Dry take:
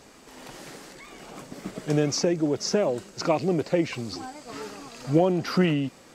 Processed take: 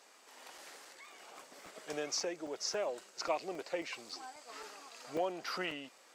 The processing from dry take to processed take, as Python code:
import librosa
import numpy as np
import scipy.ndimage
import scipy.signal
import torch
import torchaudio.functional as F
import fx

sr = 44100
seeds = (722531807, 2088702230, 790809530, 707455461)

y = scipy.signal.sosfilt(scipy.signal.butter(2, 640.0, 'highpass', fs=sr, output='sos'), x)
y = fx.buffer_crackle(y, sr, first_s=0.58, period_s=0.27, block=128, kind='zero')
y = F.gain(torch.from_numpy(y), -7.5).numpy()